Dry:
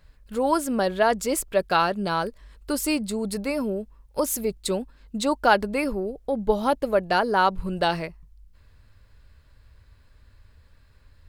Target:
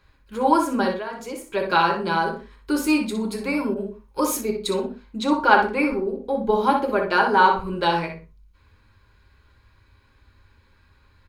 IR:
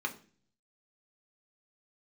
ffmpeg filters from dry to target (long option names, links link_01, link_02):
-filter_complex "[0:a]asettb=1/sr,asplit=3[link_01][link_02][link_03];[link_01]atrim=end=5.204[link_04];[link_02]atrim=start=5.2:end=6.24,asetpts=PTS-STARTPTS,afade=type=in:duration=0.004:curve=qsin,afade=type=out:start_time=1.036:duration=0.004:curve=qsin,highshelf=frequency=5300:gain=-6[link_05];[link_03]atrim=start=6.236[link_06];[link_04][link_05]acrossfade=duration=0.004:curve1=hsin:curve2=qsin[link_07];[link_07][link_06]acrossfade=duration=0.004:curve1=qsin:curve2=hsin[link_08];[1:a]atrim=start_sample=2205,atrim=end_sample=6174,asetrate=43218,aresample=44100[link_09];[link_08][link_09]afir=irnorm=-1:irlink=0,asplit=3[link_10][link_11][link_12];[link_10]afade=type=out:start_time=0.92:duration=0.02[link_13];[link_11]acompressor=threshold=-31dB:ratio=4,afade=type=in:start_time=0.92:duration=0.02,afade=type=out:start_time=1.53:duration=0.02[link_14];[link_12]afade=type=in:start_time=1.53:duration=0.02[link_15];[link_13][link_14][link_15]amix=inputs=3:normalize=0,asplit=2[link_16][link_17];[link_17]adelay=61,lowpass=frequency=3800:poles=1,volume=-5.5dB,asplit=2[link_18][link_19];[link_19]adelay=61,lowpass=frequency=3800:poles=1,volume=0.18,asplit=2[link_20][link_21];[link_21]adelay=61,lowpass=frequency=3800:poles=1,volume=0.18[link_22];[link_16][link_18][link_20][link_22]amix=inputs=4:normalize=0,asettb=1/sr,asplit=3[link_23][link_24][link_25];[link_23]atrim=end=3.744[link_26];[link_24]atrim=start=3.74:end=4.41,asetpts=PTS-STARTPTS,afade=type=in:duration=0.004:curve=qsin,afade=type=out:start_time=0.666:duration=0.004:curve=qsin,adynamicequalizer=threshold=0.0158:dfrequency=1600:dqfactor=0.7:tfrequency=1600:tqfactor=0.7:attack=5:release=100:ratio=0.375:range=2:mode=boostabove:tftype=highshelf[link_27];[link_25]atrim=start=4.406[link_28];[link_26][link_27]acrossfade=duration=0.004:curve1=hsin:curve2=qsin[link_29];[link_29][link_28]acrossfade=duration=0.004:curve1=qsin:curve2=hsin,volume=-1dB"